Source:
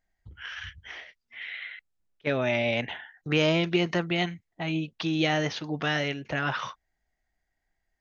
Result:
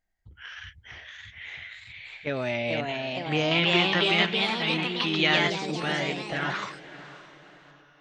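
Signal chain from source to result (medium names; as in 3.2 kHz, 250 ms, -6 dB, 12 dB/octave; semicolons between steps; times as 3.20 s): echo that smears into a reverb 603 ms, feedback 43%, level -15 dB; ever faster or slower copies 683 ms, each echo +2 st, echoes 3; 3.51–5.50 s: high-order bell 2 kHz +8.5 dB 2.3 oct; trim -3 dB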